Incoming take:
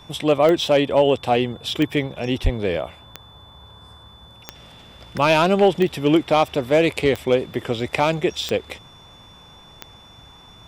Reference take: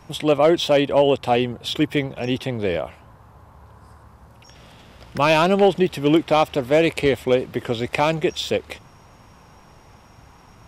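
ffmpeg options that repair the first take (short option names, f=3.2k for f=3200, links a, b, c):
-filter_complex "[0:a]adeclick=t=4,bandreject=f=3.5k:w=30,asplit=3[a][b][c];[a]afade=t=out:st=2.43:d=0.02[d];[b]highpass=f=140:w=0.5412,highpass=f=140:w=1.3066,afade=t=in:st=2.43:d=0.02,afade=t=out:st=2.55:d=0.02[e];[c]afade=t=in:st=2.55:d=0.02[f];[d][e][f]amix=inputs=3:normalize=0"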